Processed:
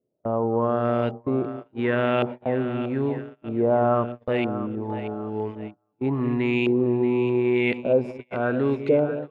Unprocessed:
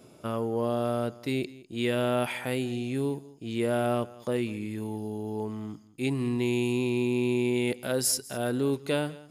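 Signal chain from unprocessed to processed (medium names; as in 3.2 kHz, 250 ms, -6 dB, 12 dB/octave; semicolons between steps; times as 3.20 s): LFO low-pass saw up 0.9 Hz 460–2700 Hz; two-band feedback delay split 520 Hz, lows 192 ms, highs 632 ms, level -11 dB; gate -33 dBFS, range -32 dB; trim +3.5 dB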